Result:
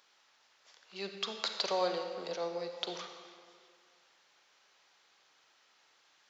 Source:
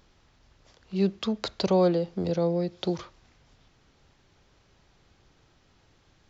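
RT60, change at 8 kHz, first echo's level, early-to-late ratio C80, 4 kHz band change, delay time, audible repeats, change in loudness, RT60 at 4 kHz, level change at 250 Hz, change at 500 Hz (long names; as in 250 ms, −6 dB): 2.0 s, can't be measured, no echo audible, 6.5 dB, +0.5 dB, no echo audible, no echo audible, −9.5 dB, 1.5 s, −19.5 dB, −10.0 dB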